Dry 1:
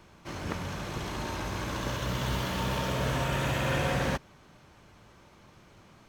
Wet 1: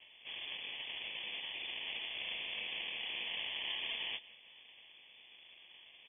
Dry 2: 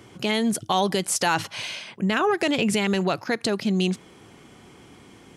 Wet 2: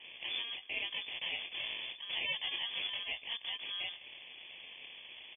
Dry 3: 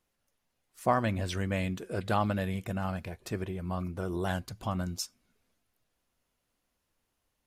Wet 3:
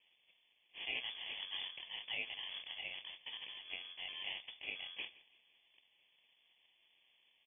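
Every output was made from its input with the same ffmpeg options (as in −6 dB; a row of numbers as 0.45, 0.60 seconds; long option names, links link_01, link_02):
-filter_complex "[0:a]aderivative,acrossover=split=2700[link_01][link_02];[link_02]acompressor=threshold=-53dB:ratio=4:attack=1:release=60[link_03];[link_01][link_03]amix=inputs=2:normalize=0,lowshelf=frequency=98:gain=11,asplit=2[link_04][link_05];[link_05]acompressor=threshold=-52dB:ratio=6,volume=-1dB[link_06];[link_04][link_06]amix=inputs=2:normalize=0,asoftclip=type=tanh:threshold=-37.5dB,flanger=delay=16.5:depth=7:speed=0.89,acrusher=samples=21:mix=1:aa=0.000001,aecho=1:1:167|334|501:0.0891|0.0303|0.0103,lowpass=frequency=3000:width_type=q:width=0.5098,lowpass=frequency=3000:width_type=q:width=0.6013,lowpass=frequency=3000:width_type=q:width=0.9,lowpass=frequency=3000:width_type=q:width=2.563,afreqshift=-3500,volume=8.5dB"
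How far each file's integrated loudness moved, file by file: −8.0, −14.0, −10.0 LU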